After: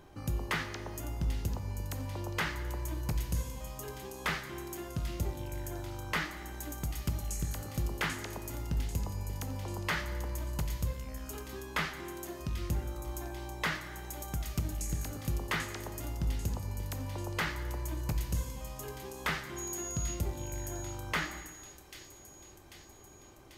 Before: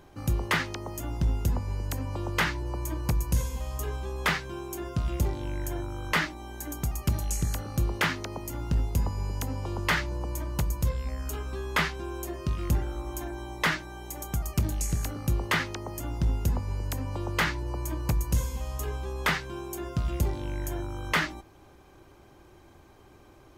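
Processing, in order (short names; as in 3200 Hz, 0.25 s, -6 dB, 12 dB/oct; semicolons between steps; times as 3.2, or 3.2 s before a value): in parallel at +1 dB: compressor, threshold -39 dBFS, peak gain reduction 17 dB; 19.56–20.13 on the sum: whine 6700 Hz -31 dBFS; thin delay 0.791 s, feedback 60%, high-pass 4300 Hz, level -6.5 dB; plate-style reverb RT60 1.3 s, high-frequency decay 0.85×, DRR 8.5 dB; gain -9 dB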